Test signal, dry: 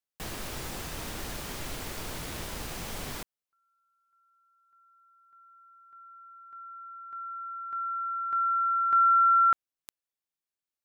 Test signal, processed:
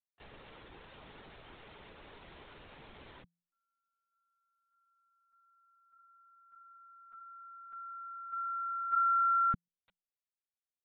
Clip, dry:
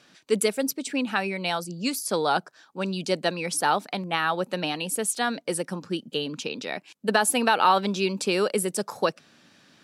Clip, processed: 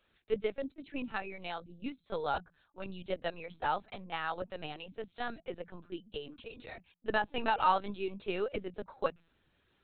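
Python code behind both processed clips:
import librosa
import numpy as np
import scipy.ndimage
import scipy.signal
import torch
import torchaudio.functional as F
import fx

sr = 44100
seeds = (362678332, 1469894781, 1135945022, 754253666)

y = scipy.signal.sosfilt(scipy.signal.ellip(8, 1.0, 60, 170.0, 'highpass', fs=sr, output='sos'), x)
y = fx.lpc_vocoder(y, sr, seeds[0], excitation='pitch_kept', order=16)
y = fx.upward_expand(y, sr, threshold_db=-32.0, expansion=1.5)
y = F.gain(torch.from_numpy(y), -6.5).numpy()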